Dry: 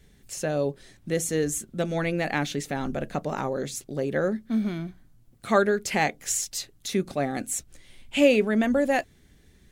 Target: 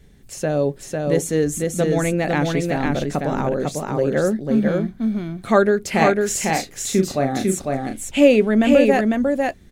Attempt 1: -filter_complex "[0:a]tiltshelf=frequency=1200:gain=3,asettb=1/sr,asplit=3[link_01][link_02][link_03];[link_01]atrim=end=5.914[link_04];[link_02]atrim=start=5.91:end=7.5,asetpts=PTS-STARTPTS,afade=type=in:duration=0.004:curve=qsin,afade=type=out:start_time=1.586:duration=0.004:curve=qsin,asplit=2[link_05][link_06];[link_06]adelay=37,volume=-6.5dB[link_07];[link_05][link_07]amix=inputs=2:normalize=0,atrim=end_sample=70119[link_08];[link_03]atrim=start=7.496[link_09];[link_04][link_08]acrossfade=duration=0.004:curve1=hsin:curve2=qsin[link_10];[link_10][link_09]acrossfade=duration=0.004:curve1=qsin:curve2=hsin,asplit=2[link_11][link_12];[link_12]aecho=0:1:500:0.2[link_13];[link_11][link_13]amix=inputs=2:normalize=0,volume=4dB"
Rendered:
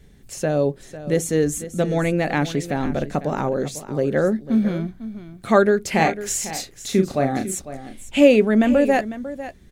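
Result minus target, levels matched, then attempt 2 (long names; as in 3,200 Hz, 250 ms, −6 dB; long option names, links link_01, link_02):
echo-to-direct −11 dB
-filter_complex "[0:a]tiltshelf=frequency=1200:gain=3,asettb=1/sr,asplit=3[link_01][link_02][link_03];[link_01]atrim=end=5.914[link_04];[link_02]atrim=start=5.91:end=7.5,asetpts=PTS-STARTPTS,afade=type=in:duration=0.004:curve=qsin,afade=type=out:start_time=1.586:duration=0.004:curve=qsin,asplit=2[link_05][link_06];[link_06]adelay=37,volume=-6.5dB[link_07];[link_05][link_07]amix=inputs=2:normalize=0,atrim=end_sample=70119[link_08];[link_03]atrim=start=7.496[link_09];[link_04][link_08]acrossfade=duration=0.004:curve1=hsin:curve2=qsin[link_10];[link_10][link_09]acrossfade=duration=0.004:curve1=qsin:curve2=hsin,asplit=2[link_11][link_12];[link_12]aecho=0:1:500:0.708[link_13];[link_11][link_13]amix=inputs=2:normalize=0,volume=4dB"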